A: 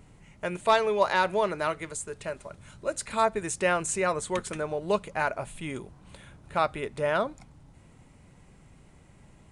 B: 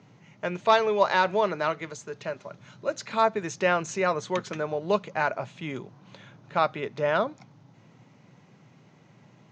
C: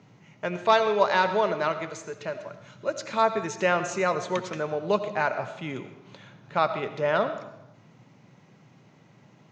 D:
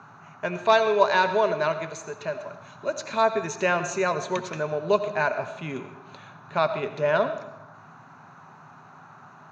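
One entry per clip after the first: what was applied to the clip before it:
Chebyshev band-pass 110–6400 Hz, order 5; gain +2 dB
reverb RT60 0.90 s, pre-delay 45 ms, DRR 10 dB
ripple EQ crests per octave 1.5, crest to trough 7 dB; band noise 690–1500 Hz -50 dBFS

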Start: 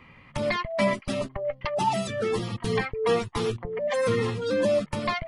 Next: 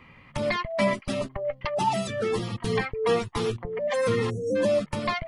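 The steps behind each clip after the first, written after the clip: spectral delete 4.3–4.56, 690–5500 Hz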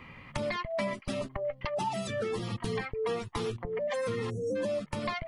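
compressor 4:1, threshold -34 dBFS, peak gain reduction 13 dB; gain +2.5 dB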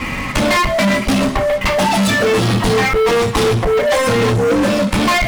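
reverb, pre-delay 3 ms, DRR -1 dB; sample leveller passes 5; gain +6 dB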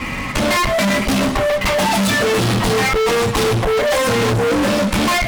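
AGC gain up to 5 dB; one-sided clip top -16.5 dBFS, bottom -10.5 dBFS; gain -2 dB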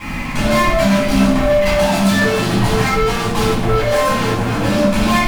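in parallel at -7.5 dB: bit-crush 5-bit; on the sum: shoebox room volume 850 m³, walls furnished, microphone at 8.4 m; gain -13.5 dB

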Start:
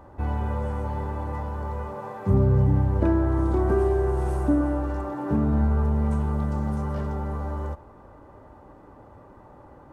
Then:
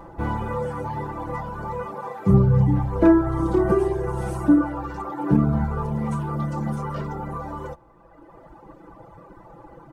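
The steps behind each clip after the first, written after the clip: reverb removal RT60 1.8 s; comb 6 ms, depth 83%; gain +5 dB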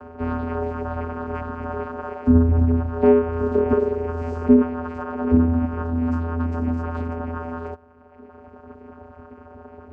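in parallel at -1 dB: compressor, threshold -28 dBFS, peak gain reduction 16.5 dB; on the sum: vocoder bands 8, square 83.1 Hz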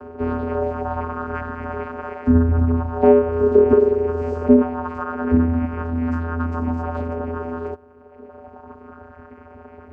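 LFO bell 0.26 Hz 360–2200 Hz +8 dB

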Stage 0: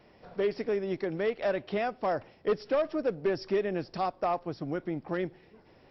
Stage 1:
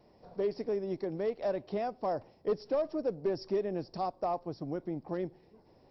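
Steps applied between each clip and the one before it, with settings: band shelf 2100 Hz -9.5 dB; gain -3 dB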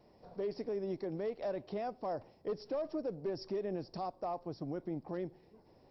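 limiter -28.5 dBFS, peak gain reduction 6 dB; gain -1.5 dB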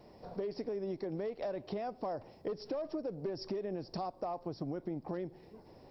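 compressor, threshold -42 dBFS, peak gain reduction 9 dB; gain +7 dB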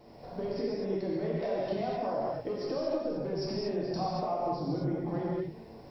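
non-linear reverb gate 0.27 s flat, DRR -6 dB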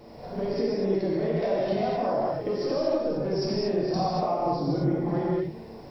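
reverse echo 57 ms -8.5 dB; gain +5.5 dB

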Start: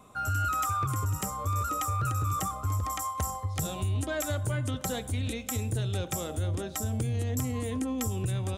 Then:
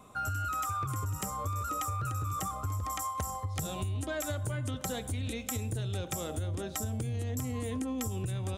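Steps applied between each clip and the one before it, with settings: compressor, threshold -31 dBFS, peak gain reduction 6 dB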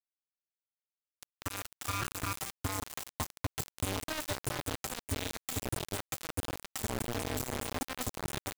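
opening faded in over 1.79 s; notch comb 180 Hz; bit-crush 5-bit; gain -1.5 dB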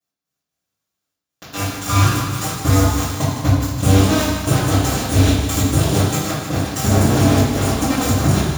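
step gate "x..xx.xxxxxxx" 187 bpm -60 dB; thinning echo 0.154 s, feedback 64%, level -9 dB; reverb RT60 1.1 s, pre-delay 3 ms, DRR -15 dB

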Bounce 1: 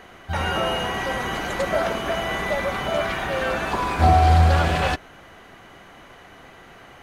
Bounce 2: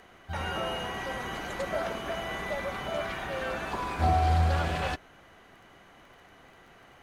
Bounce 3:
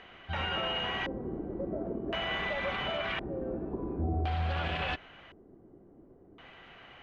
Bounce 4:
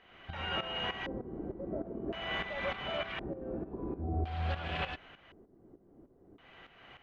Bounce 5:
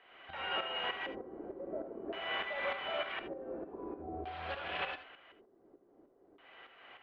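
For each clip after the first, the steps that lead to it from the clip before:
crackle 21/s -40 dBFS; gain -9 dB
LFO low-pass square 0.47 Hz 350–3000 Hz; limiter -24 dBFS, peak gain reduction 9.5 dB
tremolo saw up 3.3 Hz, depth 75%
three-band isolator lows -18 dB, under 330 Hz, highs -21 dB, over 4500 Hz; non-linear reverb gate 0.1 s rising, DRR 10 dB

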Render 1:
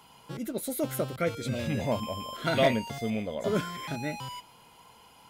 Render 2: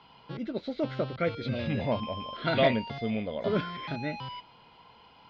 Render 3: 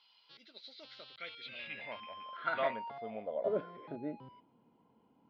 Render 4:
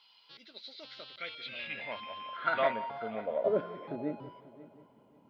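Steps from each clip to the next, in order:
steep low-pass 4700 Hz 48 dB/oct
band-pass sweep 4400 Hz -> 260 Hz, 0.94–4.5
multi-head echo 0.179 s, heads first and third, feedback 42%, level -18.5 dB; gain +4.5 dB

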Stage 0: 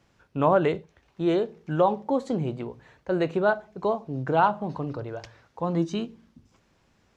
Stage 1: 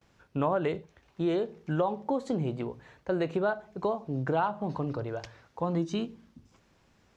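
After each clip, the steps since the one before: gate with hold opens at -58 dBFS; compressor 3:1, threshold -26 dBFS, peak gain reduction 8.5 dB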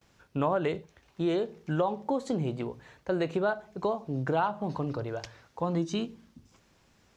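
high shelf 3800 Hz +6 dB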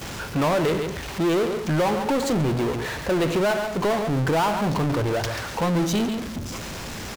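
echo 0.138 s -15.5 dB; power-law curve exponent 0.35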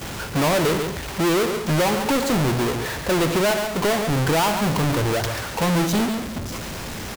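half-waves squared off

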